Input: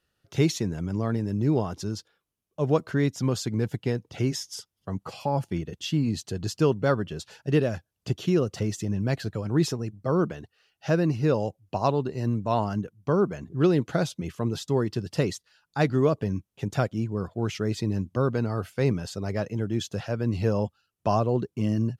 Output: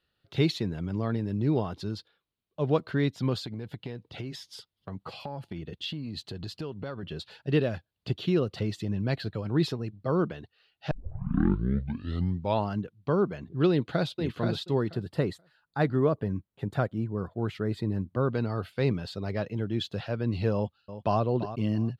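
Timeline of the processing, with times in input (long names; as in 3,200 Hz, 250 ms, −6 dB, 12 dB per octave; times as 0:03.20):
0:03.38–0:07.03: downward compressor, threshold −30 dBFS
0:10.91: tape start 1.75 s
0:13.70–0:14.16: delay throw 480 ms, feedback 15%, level −5 dB
0:14.93–0:18.30: flat-topped bell 3,800 Hz −8.5 dB
0:20.54–0:21.21: delay throw 340 ms, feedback 20%, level −12 dB
whole clip: high shelf with overshoot 5,000 Hz −7 dB, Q 3; level −2.5 dB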